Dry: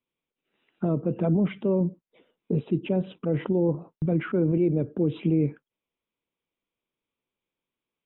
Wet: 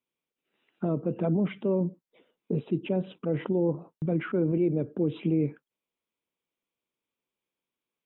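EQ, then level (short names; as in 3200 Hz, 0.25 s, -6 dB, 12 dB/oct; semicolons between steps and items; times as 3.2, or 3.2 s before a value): low shelf 83 Hz -11 dB; -1.5 dB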